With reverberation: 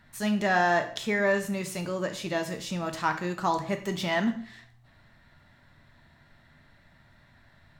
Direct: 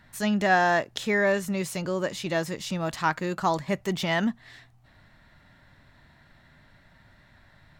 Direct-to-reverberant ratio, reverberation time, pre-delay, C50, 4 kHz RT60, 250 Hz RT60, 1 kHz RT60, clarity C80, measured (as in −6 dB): 5.5 dB, 0.55 s, 4 ms, 11.0 dB, 0.50 s, 0.45 s, 0.50 s, 15.0 dB